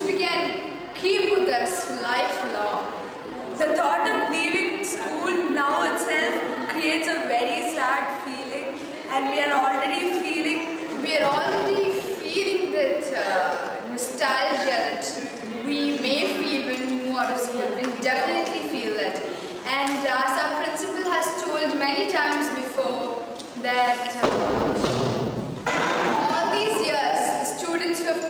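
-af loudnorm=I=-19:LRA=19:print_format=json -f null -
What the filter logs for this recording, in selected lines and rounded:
"input_i" : "-24.7",
"input_tp" : "-9.8",
"input_lra" : "1.8",
"input_thresh" : "-34.7",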